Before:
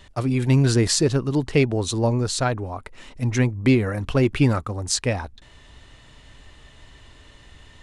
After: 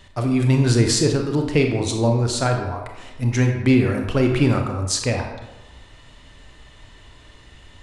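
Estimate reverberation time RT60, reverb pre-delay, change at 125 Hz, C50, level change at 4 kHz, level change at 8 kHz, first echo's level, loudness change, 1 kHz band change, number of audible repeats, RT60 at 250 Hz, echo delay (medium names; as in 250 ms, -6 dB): 1.1 s, 26 ms, +2.0 dB, 5.0 dB, +1.5 dB, +1.0 dB, no echo, +1.5 dB, +2.0 dB, no echo, 1.0 s, no echo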